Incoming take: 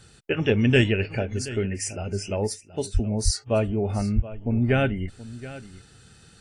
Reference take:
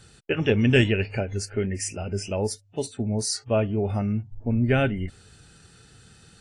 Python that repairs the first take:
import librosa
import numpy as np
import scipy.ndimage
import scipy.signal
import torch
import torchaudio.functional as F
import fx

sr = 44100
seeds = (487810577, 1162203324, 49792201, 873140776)

y = fx.fix_deplosive(x, sr, at_s=(2.93, 3.24, 4.15))
y = fx.fix_echo_inverse(y, sr, delay_ms=725, level_db=-16.5)